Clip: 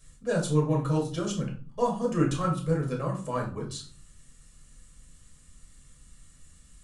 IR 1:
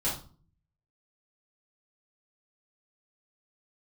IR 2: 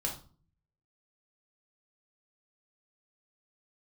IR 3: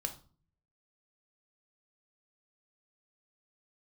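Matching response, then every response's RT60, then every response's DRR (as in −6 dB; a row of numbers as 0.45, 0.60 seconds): 2; 0.40, 0.40, 0.40 seconds; −9.5, −1.0, 5.5 decibels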